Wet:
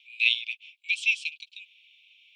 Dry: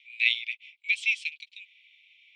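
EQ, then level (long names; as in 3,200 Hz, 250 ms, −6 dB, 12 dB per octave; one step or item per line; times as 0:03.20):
elliptic high-pass filter 2,600 Hz, stop band 60 dB
+3.5 dB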